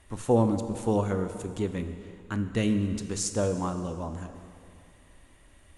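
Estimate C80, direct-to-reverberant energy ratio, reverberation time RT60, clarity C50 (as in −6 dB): 10.0 dB, 8.0 dB, 2.4 s, 9.0 dB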